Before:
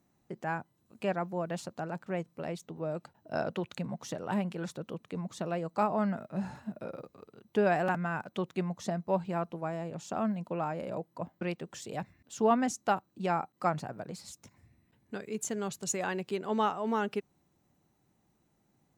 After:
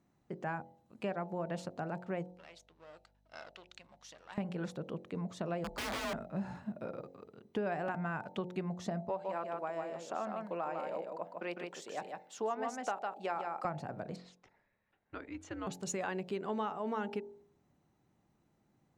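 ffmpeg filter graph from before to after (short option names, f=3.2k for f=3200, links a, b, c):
-filter_complex "[0:a]asettb=1/sr,asplit=3[a][b][c];[a]atrim=end=2.314[d];[b]atrim=start=2.31:end=4.38,asetpts=PTS-STARTPTS,afade=t=in:d=0.004:c=qsin,afade=t=out:st=2.066:d=0.004:c=qsin,aeval=exprs='if(lt(val(0),0),0.447*val(0),val(0))':c=same,bandpass=f=4.8k:t=q:w=0.8,aeval=exprs='val(0)+0.000282*(sin(2*PI*50*n/s)+sin(2*PI*2*50*n/s)/2+sin(2*PI*3*50*n/s)/3+sin(2*PI*4*50*n/s)/4+sin(2*PI*5*50*n/s)/5)':c=same[e];[c]atrim=start=4.376[f];[d][e]acrossfade=d=0.004:c1=hsin:c2=qsin[g];[g][f]acrossfade=d=0.004:c1=qsin:c2=hsin,asettb=1/sr,asplit=3[h][i][j];[h]atrim=end=5.644[k];[i]atrim=start=5.64:end=6.14,asetpts=PTS-STARTPTS,afade=t=in:d=0.004:c=qsin,afade=t=out:st=0.496:d=0.004:c=qsin,aeval=exprs='(mod(29.9*val(0)+1,2)-1)/29.9':c=same,afreqshift=35[l];[j]atrim=start=6.136[m];[k][l]acrossfade=d=0.004:c1=hsin:c2=qsin[n];[n][m]acrossfade=d=0.004:c1=qsin:c2=hsin,asettb=1/sr,asplit=3[o][p][q];[o]atrim=end=9.094[r];[p]atrim=start=9.09:end=13.65,asetpts=PTS-STARTPTS,afade=t=in:d=0.004:c=qsin,afade=t=out:st=4.556:d=0.004:c=qsin,highpass=410,aecho=1:1:153:0.562,atrim=end_sample=201096[s];[q]atrim=start=13.646[t];[r][s]acrossfade=d=0.004:c1=hsin:c2=qsin[u];[u][t]acrossfade=d=0.004:c1=qsin:c2=hsin,asettb=1/sr,asplit=3[v][w][x];[v]atrim=end=14.164[y];[w]atrim=start=14.16:end=15.67,asetpts=PTS-STARTPTS,afade=t=in:d=0.004:c=qsin,afade=t=out:st=1.506:d=0.004:c=qsin,highpass=530,lowpass=3.3k,afreqshift=-130[z];[x]atrim=start=15.666[aa];[y][z]acrossfade=d=0.004:c1=hsin:c2=qsin[ab];[ab][aa]acrossfade=d=0.004:c1=qsin:c2=hsin,lowpass=f=3.3k:p=1,bandreject=f=45.12:t=h:w=4,bandreject=f=90.24:t=h:w=4,bandreject=f=135.36:t=h:w=4,bandreject=f=180.48:t=h:w=4,bandreject=f=225.6:t=h:w=4,bandreject=f=270.72:t=h:w=4,bandreject=f=315.84:t=h:w=4,bandreject=f=360.96:t=h:w=4,bandreject=f=406.08:t=h:w=4,bandreject=f=451.2:t=h:w=4,bandreject=f=496.32:t=h:w=4,bandreject=f=541.44:t=h:w=4,bandreject=f=586.56:t=h:w=4,bandreject=f=631.68:t=h:w=4,bandreject=f=676.8:t=h:w=4,bandreject=f=721.92:t=h:w=4,bandreject=f=767.04:t=h:w=4,bandreject=f=812.16:t=h:w=4,bandreject=f=857.28:t=h:w=4,bandreject=f=902.4:t=h:w=4,acompressor=threshold=-33dB:ratio=5"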